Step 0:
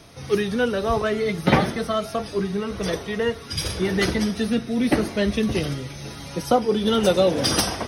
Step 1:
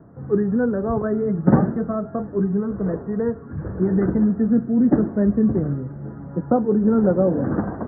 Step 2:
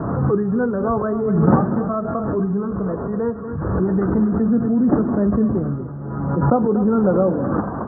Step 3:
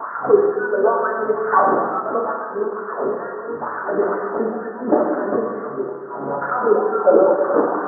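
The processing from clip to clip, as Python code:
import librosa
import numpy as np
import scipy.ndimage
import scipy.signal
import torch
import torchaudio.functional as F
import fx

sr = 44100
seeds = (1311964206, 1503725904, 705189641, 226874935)

y1 = scipy.signal.sosfilt(scipy.signal.butter(12, 1700.0, 'lowpass', fs=sr, output='sos'), x)
y1 = fx.peak_eq(y1, sr, hz=200.0, db=13.5, octaves=2.6)
y1 = y1 * librosa.db_to_amplitude(-7.5)
y2 = fx.lowpass_res(y1, sr, hz=1200.0, q=2.6)
y2 = y2 + 10.0 ** (-12.5 / 20.0) * np.pad(y2, (int(242 * sr / 1000.0), 0))[:len(y2)]
y2 = fx.pre_swell(y2, sr, db_per_s=32.0)
y2 = y2 * librosa.db_to_amplitude(-1.0)
y3 = fx.filter_lfo_highpass(y2, sr, shape='sine', hz=2.2, low_hz=400.0, high_hz=1600.0, q=2.6)
y3 = fx.hpss(y3, sr, part='percussive', gain_db=9)
y3 = fx.rev_gated(y3, sr, seeds[0], gate_ms=470, shape='falling', drr_db=-1.5)
y3 = y3 * librosa.db_to_amplitude(-6.5)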